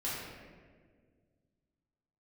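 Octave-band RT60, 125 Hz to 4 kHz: 2.6 s, 2.4 s, 2.1 s, 1.4 s, 1.4 s, 0.95 s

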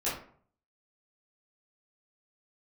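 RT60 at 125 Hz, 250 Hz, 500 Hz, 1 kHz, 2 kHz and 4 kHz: 0.75 s, 0.55 s, 0.55 s, 0.50 s, 0.40 s, 0.30 s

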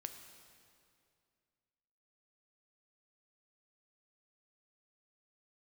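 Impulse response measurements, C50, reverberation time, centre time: 7.5 dB, 2.3 s, 34 ms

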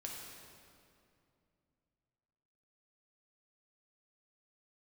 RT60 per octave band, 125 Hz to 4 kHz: 3.5 s, 3.2 s, 2.7 s, 2.4 s, 2.1 s, 1.8 s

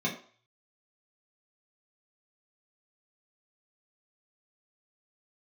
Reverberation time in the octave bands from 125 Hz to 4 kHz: 0.60 s, 0.35 s, 0.45 s, 0.50 s, 0.45 s, 0.45 s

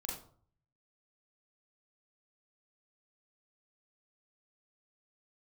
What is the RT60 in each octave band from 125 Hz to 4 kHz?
0.95 s, 0.55 s, 0.50 s, 0.50 s, 0.35 s, 0.30 s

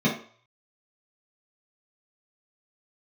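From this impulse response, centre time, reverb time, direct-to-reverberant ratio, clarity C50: 27 ms, 0.50 s, -6.5 dB, 6.5 dB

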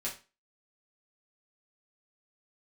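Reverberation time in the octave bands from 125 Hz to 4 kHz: 0.30 s, 0.35 s, 0.30 s, 0.30 s, 0.30 s, 0.30 s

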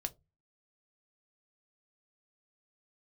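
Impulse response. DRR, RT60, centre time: 8.0 dB, 0.20 s, 4 ms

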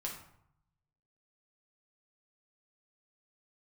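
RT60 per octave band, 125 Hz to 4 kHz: 1.3 s, 0.85 s, 0.70 s, 0.75 s, 0.55 s, 0.45 s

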